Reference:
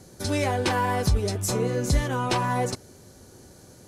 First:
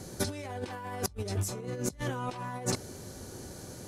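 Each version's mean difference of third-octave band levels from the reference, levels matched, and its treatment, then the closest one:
8.5 dB: compressor whose output falls as the input rises −31 dBFS, ratio −0.5
level −2.5 dB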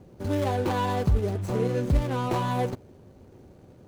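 4.5 dB: running median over 25 samples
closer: second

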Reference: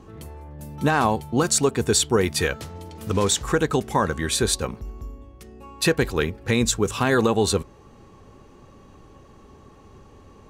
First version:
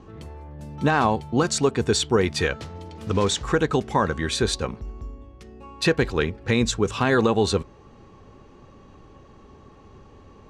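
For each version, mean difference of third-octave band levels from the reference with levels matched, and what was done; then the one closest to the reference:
2.0 dB: low-pass filter 5,600 Hz 12 dB per octave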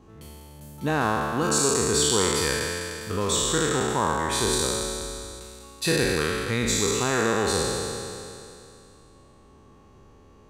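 9.0 dB: peak hold with a decay on every bin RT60 2.68 s
level −8 dB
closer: first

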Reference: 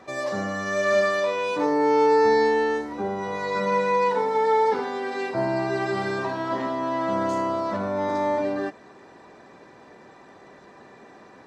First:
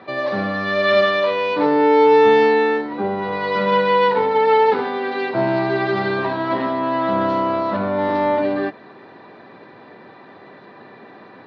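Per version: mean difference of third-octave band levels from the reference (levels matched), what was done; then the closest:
2.5 dB: stylus tracing distortion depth 0.13 ms
Chebyshev band-pass filter 100–4,200 Hz, order 4
level +6.5 dB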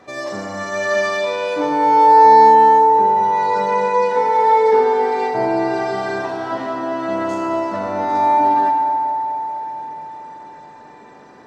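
5.0 dB: feedback echo with a band-pass in the loop 219 ms, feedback 73%, band-pass 670 Hz, level −9.5 dB
feedback delay network reverb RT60 3.1 s, low-frequency decay 1.25×, high-frequency decay 0.7×, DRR 2 dB
level +1 dB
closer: first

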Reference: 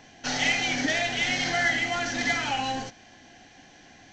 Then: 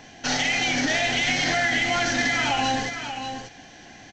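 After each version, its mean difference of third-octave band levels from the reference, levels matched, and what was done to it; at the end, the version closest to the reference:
3.0 dB: brickwall limiter −20 dBFS, peak gain reduction 7.5 dB
on a send: single-tap delay 585 ms −8 dB
on the sum: level +5.5 dB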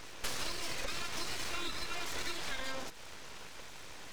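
11.5 dB: downward compressor 12 to 1, threshold −38 dBFS, peak gain reduction 18.5 dB
full-wave rectification
level +5.5 dB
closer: first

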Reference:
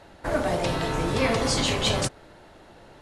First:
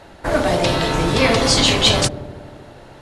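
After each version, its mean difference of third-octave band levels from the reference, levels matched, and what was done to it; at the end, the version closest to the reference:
2.0 dB: dynamic equaliser 3,900 Hz, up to +5 dB, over −41 dBFS, Q 1
delay with a low-pass on its return 78 ms, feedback 78%, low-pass 610 Hz, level −13 dB
level +7 dB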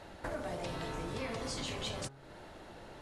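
5.0 dB: hum removal 136.6 Hz, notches 12
downward compressor 4 to 1, threshold −38 dBFS, peak gain reduction 16 dB
level −1 dB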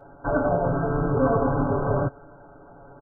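12.0 dB: linear-phase brick-wall low-pass 1,600 Hz
comb filter 7.1 ms, depth 97%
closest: first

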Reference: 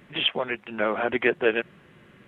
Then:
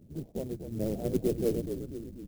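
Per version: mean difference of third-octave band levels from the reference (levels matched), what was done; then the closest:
14.0 dB: sub-octave generator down 1 octave, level −3 dB
Gaussian smoothing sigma 19 samples
on a send: echo with shifted repeats 245 ms, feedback 59%, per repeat −44 Hz, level −7.5 dB
on the sum: converter with an unsteady clock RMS 0.044 ms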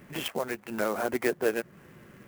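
8.0 dB: dynamic equaliser 2,900 Hz, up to −5 dB, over −39 dBFS, Q 1.2
in parallel at +3 dB: downward compressor, threshold −33 dBFS, peak gain reduction 15.5 dB
on the sum: high-frequency loss of the air 270 metres
converter with an unsteady clock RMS 0.034 ms
level −5.5 dB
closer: second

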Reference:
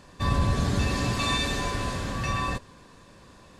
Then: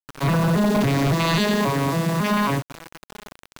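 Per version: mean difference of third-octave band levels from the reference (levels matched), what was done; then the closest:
6.5 dB: vocoder with an arpeggio as carrier minor triad, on C#3, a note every 274 ms
high-pass filter 170 Hz 6 dB per octave
bit reduction 8 bits
sine wavefolder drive 10 dB, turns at −16.5 dBFS
level +1 dB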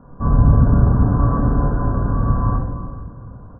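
14.5 dB: Butterworth low-pass 1,500 Hz 96 dB per octave
low-shelf EQ 260 Hz +6 dB
single-tap delay 414 ms −18.5 dB
rectangular room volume 900 cubic metres, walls mixed, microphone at 1.8 metres
level +2 dB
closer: first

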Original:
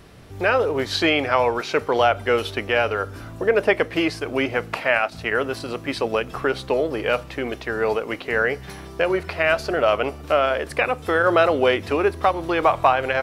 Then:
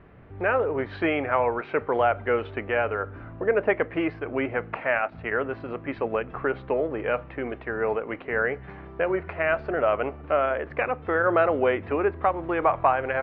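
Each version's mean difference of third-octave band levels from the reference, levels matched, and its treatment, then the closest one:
5.0 dB: low-pass filter 2,200 Hz 24 dB per octave
level −4 dB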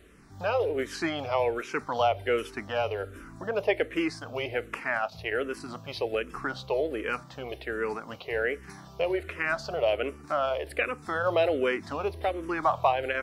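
4.0 dB: frequency shifter mixed with the dry sound −1.3 Hz
level −5.5 dB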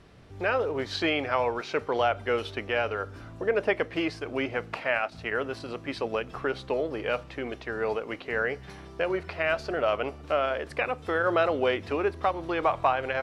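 1.5 dB: high-frequency loss of the air 55 metres
level −7 dB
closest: third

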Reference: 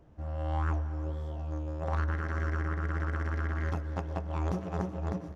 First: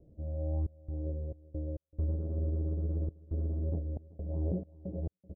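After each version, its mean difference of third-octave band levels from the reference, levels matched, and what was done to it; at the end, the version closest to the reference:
14.0 dB: Chebyshev low-pass filter 570 Hz, order 4
gate pattern "xxx.xx.x.xxxxx." 68 BPM −60 dB
single-tap delay 383 ms −21 dB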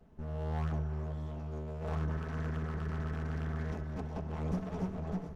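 3.5 dB: lower of the sound and its delayed copy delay 4.6 ms
low-shelf EQ 330 Hz +5.5 dB
on a send: flutter between parallel walls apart 10.8 metres, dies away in 0.23 s
on the sum: level −3.5 dB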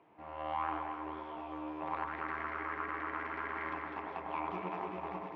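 7.5 dB: brickwall limiter −25 dBFS, peak gain reduction 9 dB
loudspeaker in its box 420–3,300 Hz, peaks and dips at 550 Hz −9 dB, 990 Hz +7 dB, 1,500 Hz −5 dB, 2,300 Hz +9 dB
delay that swaps between a low-pass and a high-pass 101 ms, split 1,600 Hz, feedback 73%, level −2.5 dB
level +2 dB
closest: second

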